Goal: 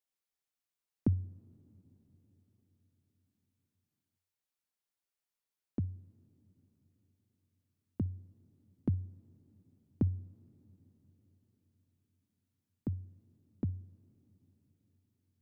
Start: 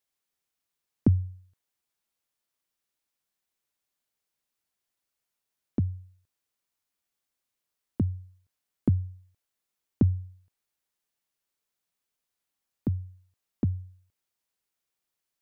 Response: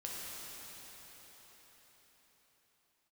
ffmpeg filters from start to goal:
-filter_complex "[0:a]asplit=2[s0][s1];[1:a]atrim=start_sample=2205,adelay=59[s2];[s1][s2]afir=irnorm=-1:irlink=0,volume=0.0708[s3];[s0][s3]amix=inputs=2:normalize=0,volume=0.398"

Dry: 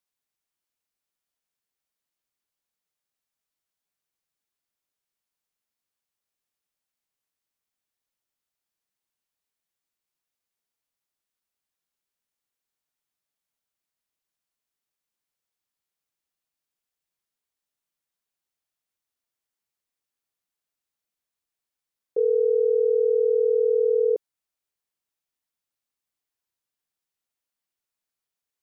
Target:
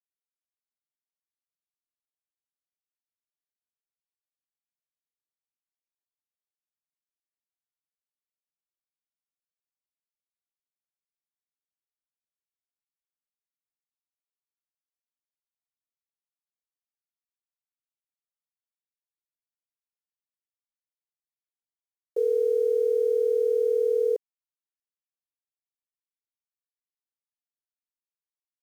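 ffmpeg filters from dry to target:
-af "highpass=f=430:p=1,acrusher=bits=8:mix=0:aa=0.000001"

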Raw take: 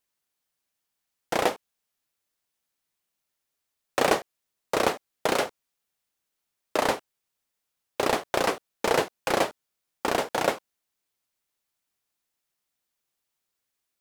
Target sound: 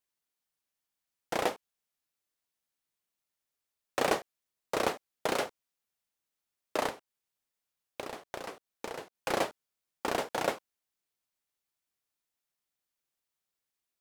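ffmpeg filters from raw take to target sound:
-filter_complex "[0:a]asettb=1/sr,asplit=3[s0][s1][s2];[s0]atrim=end=6.884[s3];[s1]atrim=start=6.88:end=9.15,asetpts=PTS-STARTPTS,afade=t=in:d=0.004:c=qsin,afade=t=out:st=2.266:d=0.004:c=qsin,acompressor=threshold=0.0316:ratio=16[s4];[s2]atrim=start=9.146[s5];[s3][s4]acrossfade=d=0.004:c1=hsin:c2=qsin[s6];[s6][s5]acrossfade=d=0.004:c1=qsin:c2=hsin,volume=0.501"

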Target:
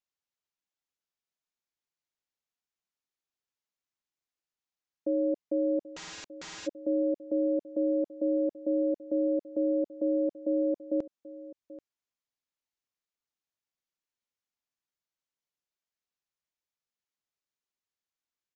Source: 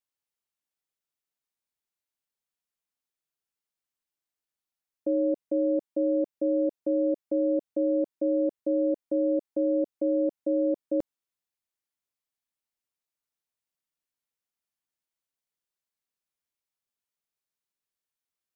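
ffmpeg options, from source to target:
-filter_complex "[0:a]aecho=1:1:784:0.141,asplit=3[s0][s1][s2];[s0]afade=t=out:st=5.87:d=0.02[s3];[s1]aeval=exprs='(mod(56.2*val(0)+1,2)-1)/56.2':c=same,afade=t=in:st=5.87:d=0.02,afade=t=out:st=6.66:d=0.02[s4];[s2]afade=t=in:st=6.66:d=0.02[s5];[s3][s4][s5]amix=inputs=3:normalize=0,aresample=16000,aresample=44100,volume=0.75"

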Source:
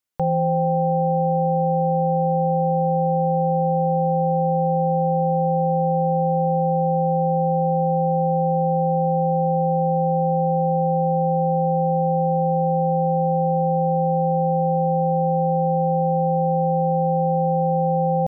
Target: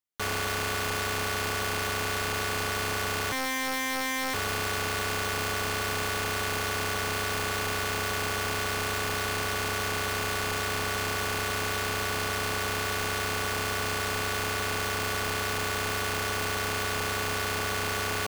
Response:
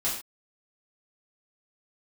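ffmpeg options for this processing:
-filter_complex "[0:a]asettb=1/sr,asplit=3[s0][s1][s2];[s0]atrim=end=3.324[s3];[s1]atrim=start=3.32:end=4.34,asetpts=PTS-STARTPTS,afade=t=in:d=0.004:c=qsin,afade=t=out:st=1.016:d=0.004:c=qsin,highpass=f=360:w=0.5412,highpass=f=360:w=1.3066[s4];[s2]atrim=start=4.336[s5];[s3][s4]acrossfade=d=0.004:c1=hsin:c2=qsin[s6];[s6][s5]acrossfade=d=0.004:c1=qsin:c2=hsin,aeval=exprs='(mod(7.08*val(0)+1,2)-1)/7.08':c=same,volume=0.398"

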